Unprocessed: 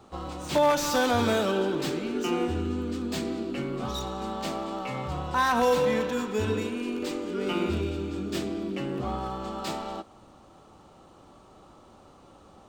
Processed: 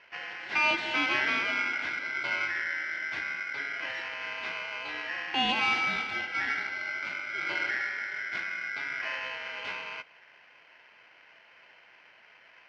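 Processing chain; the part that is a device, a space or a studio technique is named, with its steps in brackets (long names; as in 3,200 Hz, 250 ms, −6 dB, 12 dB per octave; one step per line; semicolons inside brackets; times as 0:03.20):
0:05.49–0:06.16: bass and treble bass −8 dB, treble +13 dB
ring modulator pedal into a guitar cabinet (ring modulator with a square carrier 1,800 Hz; loudspeaker in its box 100–3,600 Hz, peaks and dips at 330 Hz +4 dB, 470 Hz −6 dB, 1,200 Hz −8 dB)
level −1.5 dB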